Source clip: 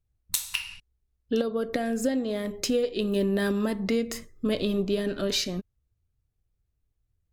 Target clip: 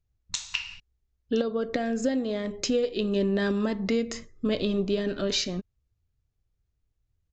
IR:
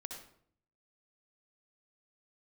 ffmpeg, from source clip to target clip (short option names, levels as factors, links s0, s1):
-af "aresample=16000,aresample=44100"